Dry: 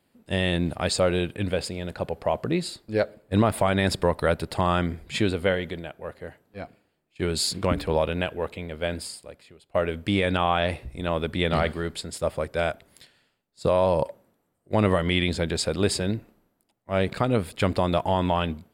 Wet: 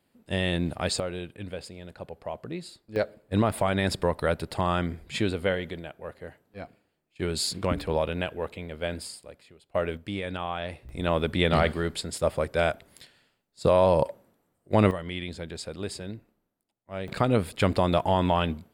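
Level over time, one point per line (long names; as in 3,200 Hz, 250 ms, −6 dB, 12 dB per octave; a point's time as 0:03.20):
−2.5 dB
from 0:01.00 −10.5 dB
from 0:02.96 −3 dB
from 0:09.97 −9.5 dB
from 0:10.89 +1 dB
from 0:14.91 −11 dB
from 0:17.08 0 dB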